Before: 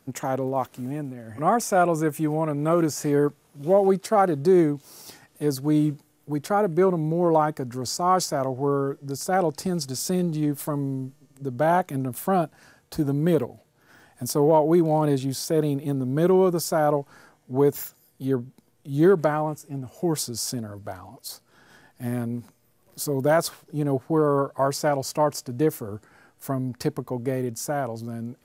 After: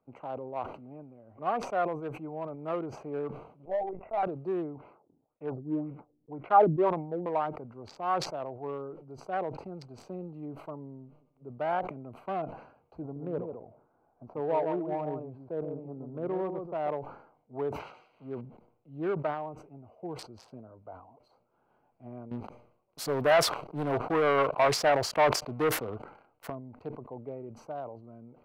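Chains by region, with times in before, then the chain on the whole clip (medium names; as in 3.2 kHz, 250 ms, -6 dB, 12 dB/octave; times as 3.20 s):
3.65–4.23 s: rippled Chebyshev low-pass 2.8 kHz, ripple 9 dB + LPC vocoder at 8 kHz pitch kept
4.75–7.26 s: LFO low-pass sine 1.9 Hz 230–2400 Hz + dynamic bell 870 Hz, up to +7 dB, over -34 dBFS, Q 1.6 + expander -42 dBFS
13.02–16.89 s: low-pass 1.2 kHz + delay 138 ms -6 dB
17.79–18.41 s: zero-crossing glitches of -20 dBFS + low-pass 3.6 kHz
22.31–26.50 s: waveshaping leveller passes 3 + treble shelf 2.6 kHz +8 dB
whole clip: local Wiener filter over 25 samples; three-band isolator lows -12 dB, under 490 Hz, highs -24 dB, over 3.3 kHz; decay stretcher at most 89 dB/s; trim -6.5 dB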